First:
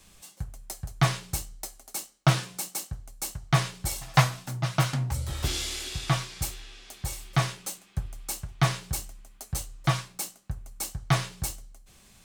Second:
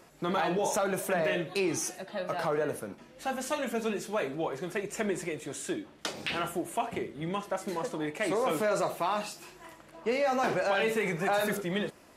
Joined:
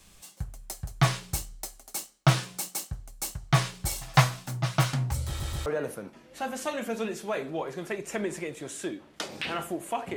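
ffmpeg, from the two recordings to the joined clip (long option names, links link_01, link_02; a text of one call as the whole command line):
ffmpeg -i cue0.wav -i cue1.wav -filter_complex "[0:a]apad=whole_dur=10.16,atrim=end=10.16,asplit=3[link_01][link_02][link_03];[link_01]atrim=end=5.402[link_04];[link_02]atrim=start=5.268:end=5.402[link_05];[link_03]atrim=start=5.268:end=5.402[link_06];[1:a]atrim=start=2.508:end=7.01[link_07];[link_04][link_05]acrossfade=duration=0.004:curve1=hsin:curve2=hsin[link_08];[link_08][link_06]acrossfade=duration=0.004:curve1=hsin:curve2=hsin[link_09];[link_09][link_07]acrossfade=duration=0.004:curve1=hsin:curve2=hsin" out.wav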